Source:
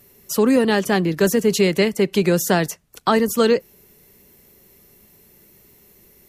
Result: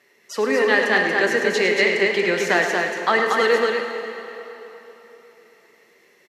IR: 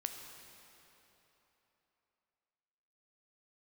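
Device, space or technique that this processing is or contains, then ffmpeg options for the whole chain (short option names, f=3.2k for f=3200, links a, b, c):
station announcement: -filter_complex "[0:a]highpass=420,lowpass=4.9k,equalizer=f=1.9k:t=o:w=0.42:g=11,aecho=1:1:105|233.2:0.316|0.631[a];[1:a]atrim=start_sample=2205[b];[a][b]afir=irnorm=-1:irlink=0"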